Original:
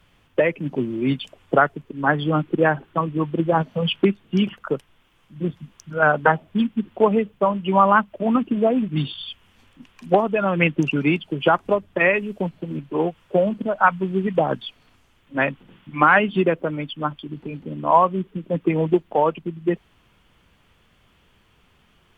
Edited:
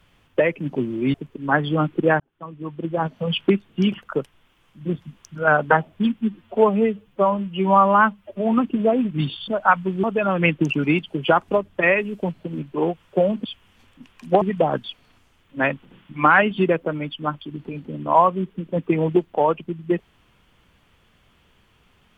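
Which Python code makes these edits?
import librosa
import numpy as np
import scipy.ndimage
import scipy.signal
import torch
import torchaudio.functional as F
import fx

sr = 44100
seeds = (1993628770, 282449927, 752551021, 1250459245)

y = fx.edit(x, sr, fx.cut(start_s=1.14, length_s=0.55),
    fx.fade_in_span(start_s=2.75, length_s=1.28),
    fx.stretch_span(start_s=6.76, length_s=1.55, factor=1.5),
    fx.swap(start_s=9.25, length_s=0.96, other_s=13.63, other_length_s=0.56), tone=tone)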